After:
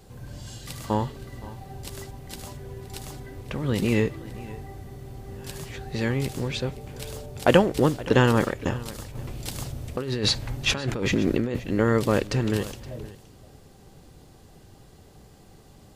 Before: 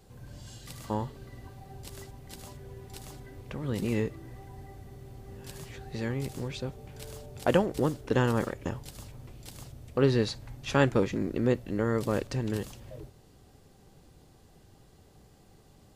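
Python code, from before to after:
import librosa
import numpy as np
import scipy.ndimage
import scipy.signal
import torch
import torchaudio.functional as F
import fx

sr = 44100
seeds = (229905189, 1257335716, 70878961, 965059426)

y = fx.dynamic_eq(x, sr, hz=2800.0, q=0.91, threshold_db=-50.0, ratio=4.0, max_db=4)
y = fx.over_compress(y, sr, threshold_db=-32.0, ratio=-1.0, at=(9.15, 11.6))
y = y + 10.0 ** (-18.5 / 20.0) * np.pad(y, (int(520 * sr / 1000.0), 0))[:len(y)]
y = y * librosa.db_to_amplitude(6.5)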